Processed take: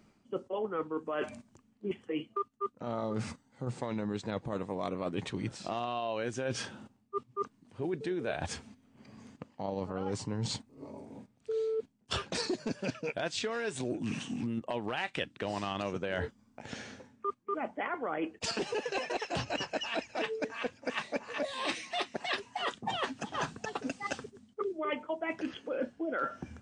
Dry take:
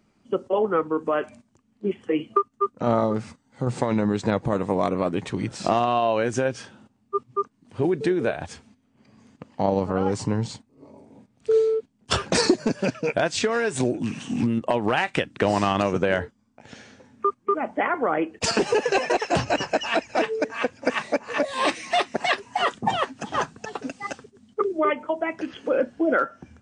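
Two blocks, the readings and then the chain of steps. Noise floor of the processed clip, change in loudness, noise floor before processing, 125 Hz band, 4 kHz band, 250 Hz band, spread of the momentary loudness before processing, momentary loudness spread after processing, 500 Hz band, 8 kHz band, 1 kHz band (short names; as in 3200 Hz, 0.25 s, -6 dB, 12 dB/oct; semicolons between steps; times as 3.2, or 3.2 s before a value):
-69 dBFS, -11.5 dB, -66 dBFS, -10.5 dB, -7.5 dB, -11.5 dB, 9 LU, 7 LU, -12.0 dB, -10.0 dB, -12.0 dB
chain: dynamic EQ 3500 Hz, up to +6 dB, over -43 dBFS, Q 1.4; reverse; compressor 6:1, threshold -34 dBFS, peak gain reduction 19.5 dB; reverse; gain +1.5 dB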